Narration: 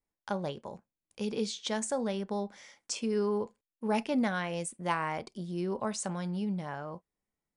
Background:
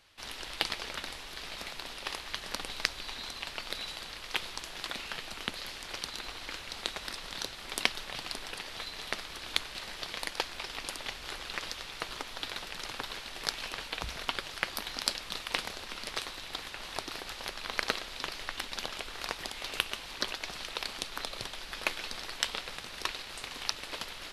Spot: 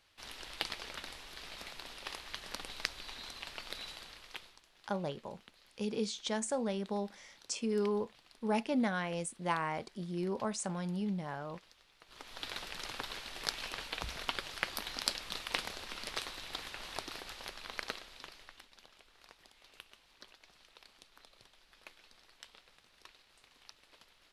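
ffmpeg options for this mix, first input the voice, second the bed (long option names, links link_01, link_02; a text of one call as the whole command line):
ffmpeg -i stem1.wav -i stem2.wav -filter_complex "[0:a]adelay=4600,volume=-2.5dB[link_01];[1:a]volume=14.5dB,afade=type=out:start_time=3.87:duration=0.74:silence=0.133352,afade=type=in:start_time=12.06:duration=0.47:silence=0.0944061,afade=type=out:start_time=16.74:duration=1.97:silence=0.105925[link_02];[link_01][link_02]amix=inputs=2:normalize=0" out.wav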